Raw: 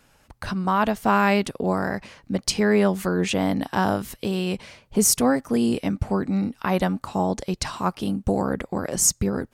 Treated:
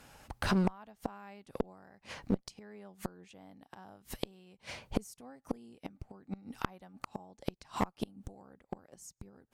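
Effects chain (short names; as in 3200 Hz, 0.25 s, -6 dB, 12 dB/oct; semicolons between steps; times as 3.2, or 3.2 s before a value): bell 790 Hz +5 dB 0.3 oct; flipped gate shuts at -16 dBFS, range -34 dB; one-sided clip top -33.5 dBFS; gain +1.5 dB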